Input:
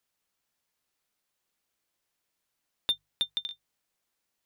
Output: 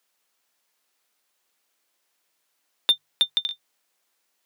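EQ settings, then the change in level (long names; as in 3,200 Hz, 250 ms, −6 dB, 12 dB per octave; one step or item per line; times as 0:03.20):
Bessel high-pass filter 350 Hz, order 2
+8.5 dB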